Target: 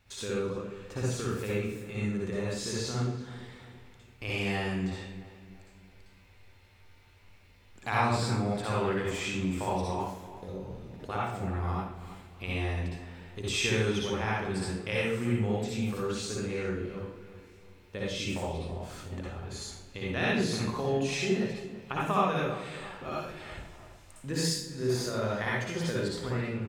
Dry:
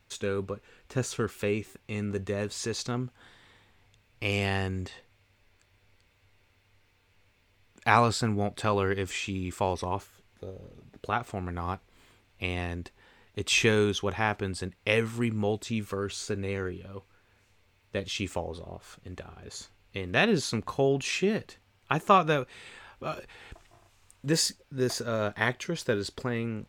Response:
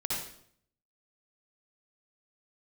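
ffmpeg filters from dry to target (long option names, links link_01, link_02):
-filter_complex "[0:a]acompressor=threshold=-46dB:ratio=1.5,asplit=2[link_01][link_02];[link_02]adelay=334,lowpass=frequency=2700:poles=1,volume=-14dB,asplit=2[link_03][link_04];[link_04]adelay=334,lowpass=frequency=2700:poles=1,volume=0.46,asplit=2[link_05][link_06];[link_06]adelay=334,lowpass=frequency=2700:poles=1,volume=0.46,asplit=2[link_07][link_08];[link_08]adelay=334,lowpass=frequency=2700:poles=1,volume=0.46[link_09];[link_01][link_03][link_05][link_07][link_09]amix=inputs=5:normalize=0[link_10];[1:a]atrim=start_sample=2205[link_11];[link_10][link_11]afir=irnorm=-1:irlink=0"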